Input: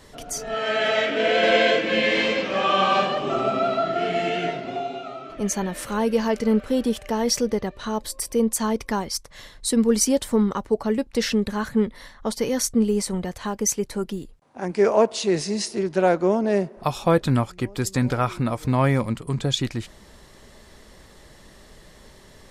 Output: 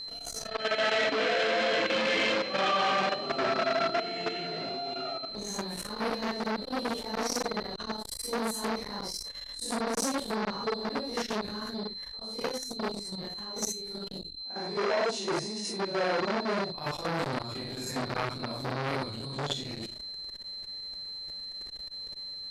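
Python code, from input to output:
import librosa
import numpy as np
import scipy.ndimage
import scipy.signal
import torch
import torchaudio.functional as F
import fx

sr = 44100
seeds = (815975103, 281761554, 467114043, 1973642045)

y = fx.phase_scramble(x, sr, seeds[0], window_ms=200)
y = fx.peak_eq(y, sr, hz=68.0, db=-5.5, octaves=0.56)
y = fx.hum_notches(y, sr, base_hz=60, count=7)
y = fx.level_steps(y, sr, step_db=12)
y = fx.chopper(y, sr, hz=2.6, depth_pct=60, duty_pct=25, at=(11.64, 14.07))
y = y + 10.0 ** (-37.0 / 20.0) * np.sin(2.0 * np.pi * 4100.0 * np.arange(len(y)) / sr)
y = fx.transformer_sat(y, sr, knee_hz=2100.0)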